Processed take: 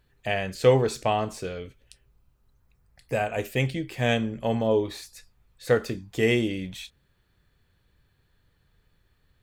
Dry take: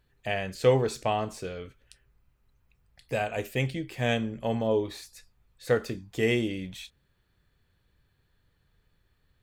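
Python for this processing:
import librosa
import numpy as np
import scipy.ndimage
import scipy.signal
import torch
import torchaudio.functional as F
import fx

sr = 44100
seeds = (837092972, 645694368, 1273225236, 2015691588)

y = fx.peak_eq(x, sr, hz=fx.line((1.58, 1200.0), (3.38, 4400.0)), db=-7.5, octaves=0.77, at=(1.58, 3.38), fade=0.02)
y = y * librosa.db_to_amplitude(3.0)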